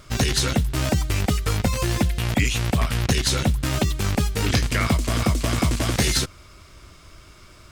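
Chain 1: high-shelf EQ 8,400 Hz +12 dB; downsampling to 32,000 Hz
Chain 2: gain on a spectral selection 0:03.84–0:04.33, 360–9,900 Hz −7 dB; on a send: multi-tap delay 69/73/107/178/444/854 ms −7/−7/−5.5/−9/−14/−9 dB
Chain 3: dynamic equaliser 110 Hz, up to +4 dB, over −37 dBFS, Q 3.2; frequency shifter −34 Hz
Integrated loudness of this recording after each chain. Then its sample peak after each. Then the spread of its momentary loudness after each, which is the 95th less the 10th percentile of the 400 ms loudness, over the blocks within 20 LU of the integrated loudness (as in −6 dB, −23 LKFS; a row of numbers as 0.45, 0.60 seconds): −21.0, −20.0, −22.5 LKFS; −6.0, −5.0, −6.5 dBFS; 4, 9, 3 LU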